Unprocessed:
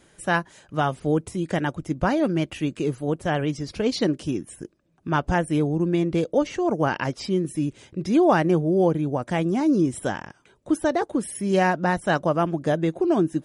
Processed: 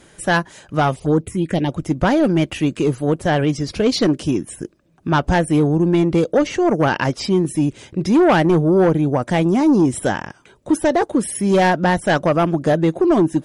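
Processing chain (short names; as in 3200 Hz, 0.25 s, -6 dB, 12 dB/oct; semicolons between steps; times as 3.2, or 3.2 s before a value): in parallel at -9 dB: sine folder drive 9 dB, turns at -7 dBFS; 0.96–1.72 on the sum: envelope phaser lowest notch 240 Hz, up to 2600 Hz, full sweep at -11 dBFS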